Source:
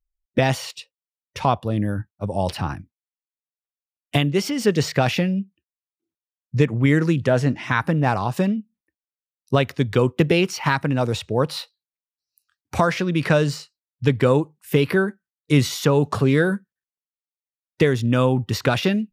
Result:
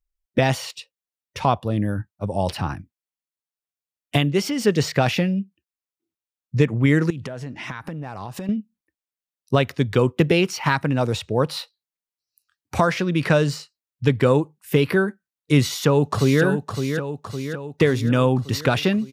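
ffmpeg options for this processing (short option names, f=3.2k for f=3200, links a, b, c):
-filter_complex "[0:a]asettb=1/sr,asplit=3[a][b][c];[a]atrim=end=7.104[d];[b]atrim=start=7.1:end=8.49,asetpts=PTS-STARTPTS,afade=t=in:d=0.004:c=qsin,afade=t=out:st=1.386:d=0.004:c=qsin,acompressor=threshold=-27dB:ratio=20:attack=3.2:release=140:knee=1:detection=peak[e];[c]atrim=start=8.486[f];[d][e]acrossfade=d=0.004:c1=hsin:c2=qsin[g];[g][f]acrossfade=d=0.004:c1=qsin:c2=hsin,asplit=2[h][i];[i]afade=t=in:st=15.61:d=0.01,afade=t=out:st=16.43:d=0.01,aecho=0:1:560|1120|1680|2240|2800|3360|3920|4480:0.446684|0.26801|0.160806|0.0964837|0.0578902|0.0347341|0.0208405|0.0125043[j];[h][j]amix=inputs=2:normalize=0"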